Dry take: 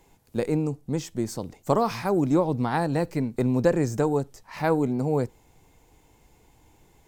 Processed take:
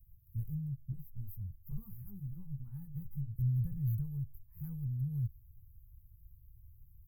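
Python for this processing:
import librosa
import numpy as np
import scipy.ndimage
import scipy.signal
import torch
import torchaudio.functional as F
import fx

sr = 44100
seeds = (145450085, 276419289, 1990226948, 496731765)

y = scipy.signal.sosfilt(scipy.signal.cheby2(4, 50, [280.0, 7600.0], 'bandstop', fs=sr, output='sos'), x)
y = fx.chorus_voices(y, sr, voices=4, hz=1.4, base_ms=12, depth_ms=3.0, mix_pct=60, at=(0.92, 3.36))
y = y * 10.0 ** (4.5 / 20.0)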